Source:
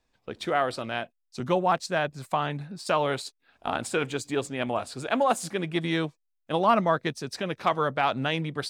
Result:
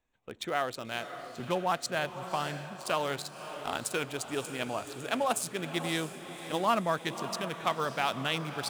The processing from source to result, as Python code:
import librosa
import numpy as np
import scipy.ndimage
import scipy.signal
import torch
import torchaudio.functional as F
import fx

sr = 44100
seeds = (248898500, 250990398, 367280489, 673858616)

y = fx.wiener(x, sr, points=9)
y = F.preemphasis(torch.from_numpy(y), 0.8).numpy()
y = fx.echo_diffused(y, sr, ms=584, feedback_pct=52, wet_db=-10.5)
y = y * librosa.db_to_amplitude(7.0)